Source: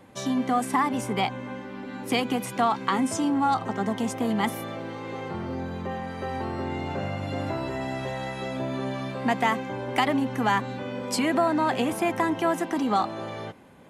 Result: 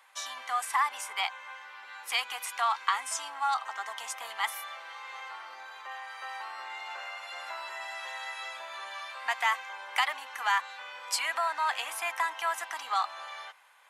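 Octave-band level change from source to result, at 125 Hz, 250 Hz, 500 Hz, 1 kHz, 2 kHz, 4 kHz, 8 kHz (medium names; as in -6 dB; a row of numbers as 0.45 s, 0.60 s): under -40 dB, under -40 dB, -16.5 dB, -4.5 dB, 0.0 dB, 0.0 dB, 0.0 dB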